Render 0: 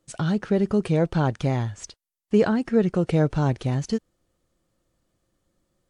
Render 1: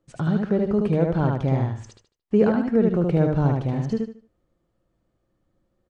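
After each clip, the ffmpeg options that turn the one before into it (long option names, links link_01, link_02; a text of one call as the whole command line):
ffmpeg -i in.wav -filter_complex "[0:a]lowpass=frequency=1300:poles=1,asplit=2[link_01][link_02];[link_02]aecho=0:1:75|150|225|300:0.708|0.198|0.0555|0.0155[link_03];[link_01][link_03]amix=inputs=2:normalize=0" out.wav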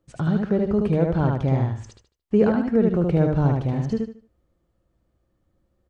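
ffmpeg -i in.wav -af "equalizer=frequency=65:width_type=o:width=0.68:gain=10.5" out.wav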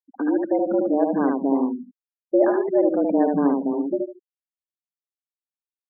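ffmpeg -i in.wav -af "afreqshift=140,afftfilt=real='re*gte(hypot(re,im),0.0447)':imag='im*gte(hypot(re,im),0.0447)':win_size=1024:overlap=0.75" out.wav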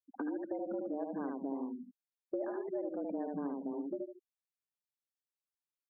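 ffmpeg -i in.wav -af "acompressor=threshold=-30dB:ratio=4,volume=-7dB" out.wav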